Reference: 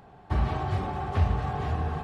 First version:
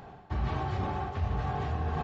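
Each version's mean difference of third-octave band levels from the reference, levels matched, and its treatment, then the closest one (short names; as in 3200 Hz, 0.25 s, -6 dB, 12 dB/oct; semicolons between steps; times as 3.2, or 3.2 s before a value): 2.5 dB: de-hum 48.54 Hz, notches 27; reverse; compressor 4:1, threshold -35 dBFS, peak gain reduction 14.5 dB; reverse; downsampling 16000 Hz; gain +5.5 dB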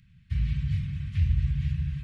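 12.5 dB: Chebyshev band-stop 160–2200 Hz, order 3; high shelf 3700 Hz -6.5 dB; dark delay 72 ms, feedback 79%, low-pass 490 Hz, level -5.5 dB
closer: first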